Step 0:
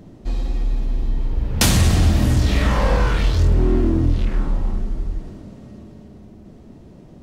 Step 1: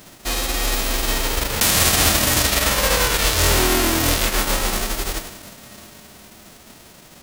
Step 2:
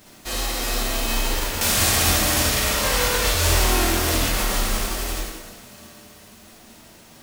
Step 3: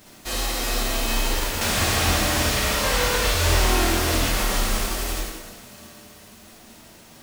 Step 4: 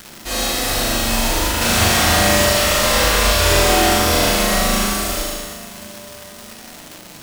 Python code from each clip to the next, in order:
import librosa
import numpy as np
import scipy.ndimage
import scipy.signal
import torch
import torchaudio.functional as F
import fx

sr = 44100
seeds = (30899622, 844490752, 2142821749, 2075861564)

y1 = fx.envelope_flatten(x, sr, power=0.3)
y1 = y1 * 10.0 ** (-2.5 / 20.0)
y2 = fx.rev_plate(y1, sr, seeds[0], rt60_s=1.1, hf_ratio=0.85, predelay_ms=0, drr_db=-3.5)
y2 = y2 * 10.0 ** (-7.5 / 20.0)
y3 = fx.slew_limit(y2, sr, full_power_hz=400.0)
y4 = fx.room_flutter(y3, sr, wall_m=6.7, rt60_s=1.1)
y4 = fx.dmg_crackle(y4, sr, seeds[1], per_s=360.0, level_db=-27.0)
y4 = y4 * 10.0 ** (3.0 / 20.0)